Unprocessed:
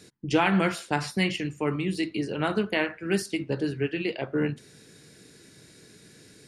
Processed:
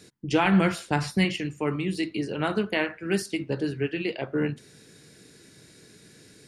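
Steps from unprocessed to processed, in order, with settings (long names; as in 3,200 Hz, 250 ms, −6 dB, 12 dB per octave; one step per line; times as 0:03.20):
0:00.45–0:01.25: low-shelf EQ 140 Hz +10.5 dB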